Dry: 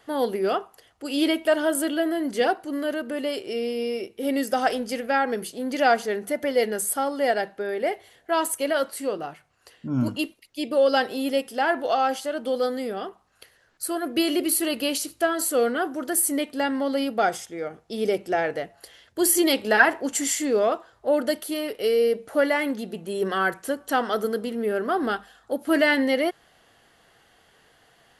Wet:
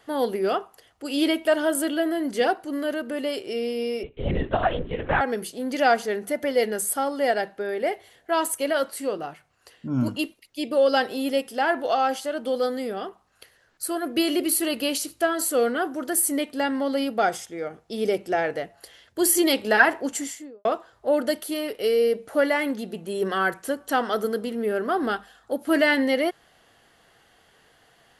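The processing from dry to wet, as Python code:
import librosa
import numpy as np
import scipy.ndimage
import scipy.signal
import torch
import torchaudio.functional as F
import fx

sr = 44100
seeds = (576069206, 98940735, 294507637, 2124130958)

y = fx.lpc_vocoder(x, sr, seeds[0], excitation='whisper', order=10, at=(4.03, 5.21))
y = fx.studio_fade_out(y, sr, start_s=20.0, length_s=0.65)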